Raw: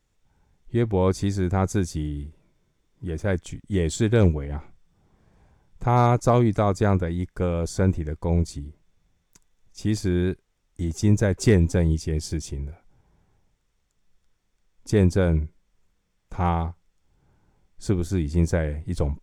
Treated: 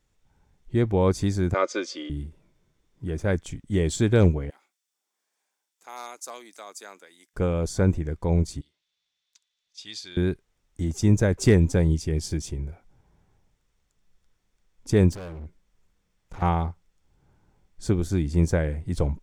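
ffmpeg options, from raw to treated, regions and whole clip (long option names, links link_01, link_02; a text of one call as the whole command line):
ffmpeg -i in.wav -filter_complex "[0:a]asettb=1/sr,asplit=3[link_01][link_02][link_03];[link_01]atrim=end=1.544[link_04];[link_02]atrim=start=1.54:end=2.1,asetpts=PTS-STARTPTS,afade=type=in:duration=0.004:curve=qsin,afade=type=out:start_time=0.556:duration=0.004:curve=qsin,highpass=frequency=360:width=0.5412,highpass=frequency=360:width=1.3066,equalizer=frequency=530:width_type=q:width=4:gain=9,equalizer=frequency=800:width_type=q:width=4:gain=-10,equalizer=frequency=1200:width_type=q:width=4:gain=7,equalizer=frequency=2200:width_type=q:width=4:gain=7,equalizer=frequency=3200:width_type=q:width=4:gain=8,equalizer=frequency=4900:width_type=q:width=4:gain=6,lowpass=frequency=6000:width=0.5412,lowpass=frequency=6000:width=1.3066,aecho=1:1:3.4:0.42,atrim=end_sample=24696[link_05];[link_03]atrim=start=2.096[link_06];[link_04][link_05]acrossfade=duration=0.004:curve1=hsin:curve2=qsin[link_07];[link_07][link_06]acrossfade=duration=0.004:curve1=qsin:curve2=hsin,asettb=1/sr,asplit=3[link_08][link_09][link_10];[link_08]atrim=end=4.504[link_11];[link_09]atrim=start=4.5:end=7.34,asetpts=PTS-STARTPTS,afade=type=in:duration=0.004:curve=qsin,afade=type=out:start_time=2.836:duration=0.004:curve=qsin,highpass=frequency=240:width=0.5412,highpass=frequency=240:width=1.3066,aderivative[link_12];[link_10]atrim=start=7.336[link_13];[link_11][link_12]acrossfade=duration=0.004:curve1=hsin:curve2=qsin[link_14];[link_14][link_13]acrossfade=duration=0.004:curve1=qsin:curve2=hsin,asettb=1/sr,asplit=3[link_15][link_16][link_17];[link_15]atrim=end=8.614[link_18];[link_16]atrim=start=8.61:end=10.17,asetpts=PTS-STARTPTS,afade=type=in:duration=0.004:curve=qsin,afade=type=out:start_time=1.556:duration=0.004:curve=qsin,bandpass=frequency=3800:width_type=q:width=2.8,acontrast=61[link_19];[link_17]atrim=start=10.166[link_20];[link_18][link_19]acrossfade=duration=0.004:curve1=hsin:curve2=qsin[link_21];[link_21][link_20]acrossfade=duration=0.004:curve1=qsin:curve2=hsin,asettb=1/sr,asplit=3[link_22][link_23][link_24];[link_22]atrim=end=15.124[link_25];[link_23]atrim=start=15.12:end=16.42,asetpts=PTS-STARTPTS,afade=type=in:duration=0.004:curve=qsin,afade=type=out:start_time=1.296:duration=0.004:curve=qsin,acompressor=threshold=-22dB:ratio=4:attack=3.2:release=140:knee=1:detection=peak,volume=35.5dB,asoftclip=hard,volume=-35.5dB[link_26];[link_24]atrim=start=16.416[link_27];[link_25][link_26]acrossfade=duration=0.004:curve1=hsin:curve2=qsin[link_28];[link_28][link_27]acrossfade=duration=0.004:curve1=qsin:curve2=hsin" out.wav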